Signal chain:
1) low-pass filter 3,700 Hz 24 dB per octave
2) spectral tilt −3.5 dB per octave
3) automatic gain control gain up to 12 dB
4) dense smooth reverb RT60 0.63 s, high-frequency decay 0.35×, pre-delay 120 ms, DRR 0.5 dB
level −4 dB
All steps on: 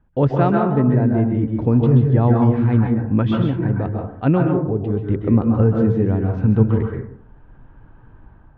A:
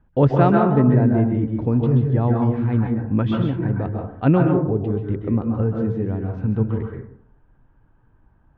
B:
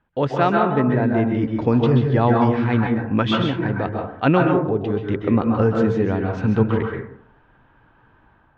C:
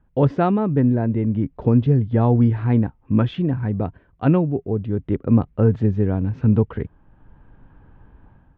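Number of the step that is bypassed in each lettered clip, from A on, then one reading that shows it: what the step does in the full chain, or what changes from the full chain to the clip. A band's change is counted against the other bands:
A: 3, change in crest factor +2.0 dB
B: 2, 2 kHz band +8.0 dB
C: 4, change in integrated loudness −2.0 LU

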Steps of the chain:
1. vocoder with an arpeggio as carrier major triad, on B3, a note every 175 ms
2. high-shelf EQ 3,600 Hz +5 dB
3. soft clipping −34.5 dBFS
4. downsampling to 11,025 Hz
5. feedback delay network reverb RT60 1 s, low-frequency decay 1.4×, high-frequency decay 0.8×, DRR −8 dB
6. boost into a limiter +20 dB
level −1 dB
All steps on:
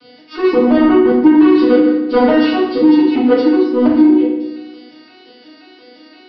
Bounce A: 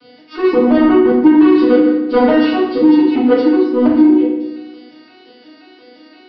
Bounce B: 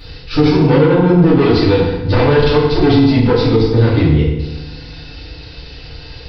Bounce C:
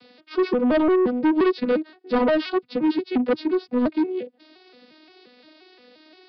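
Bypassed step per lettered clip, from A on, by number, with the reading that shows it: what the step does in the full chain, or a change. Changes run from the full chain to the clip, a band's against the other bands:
2, 4 kHz band −2.0 dB
1, 4 kHz band +6.0 dB
5, change in crest factor −2.5 dB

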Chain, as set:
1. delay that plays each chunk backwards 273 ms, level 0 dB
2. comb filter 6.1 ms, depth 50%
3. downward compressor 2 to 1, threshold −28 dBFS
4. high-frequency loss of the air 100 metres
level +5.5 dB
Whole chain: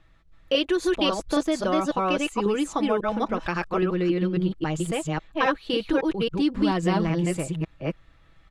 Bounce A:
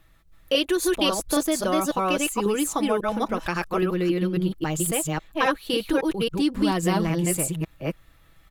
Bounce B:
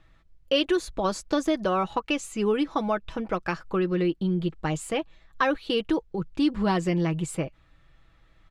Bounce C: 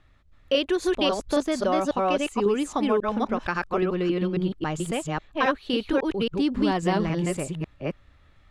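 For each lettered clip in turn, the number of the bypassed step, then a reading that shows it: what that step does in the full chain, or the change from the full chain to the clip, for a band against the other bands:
4, 8 kHz band +10.5 dB
1, change in momentary loudness spread +1 LU
2, 125 Hz band −2.0 dB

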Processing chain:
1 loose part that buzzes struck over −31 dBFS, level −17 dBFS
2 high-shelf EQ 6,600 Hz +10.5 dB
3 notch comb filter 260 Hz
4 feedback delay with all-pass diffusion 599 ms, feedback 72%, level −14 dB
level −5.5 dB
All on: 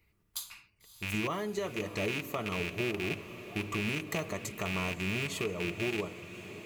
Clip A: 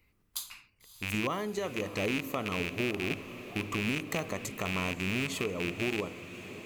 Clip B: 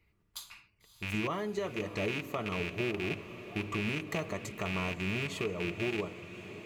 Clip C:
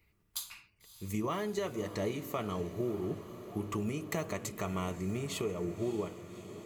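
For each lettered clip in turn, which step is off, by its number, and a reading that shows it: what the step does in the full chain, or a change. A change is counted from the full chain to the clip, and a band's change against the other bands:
3, change in integrated loudness +1.5 LU
2, 8 kHz band −5.5 dB
1, 2 kHz band −10.5 dB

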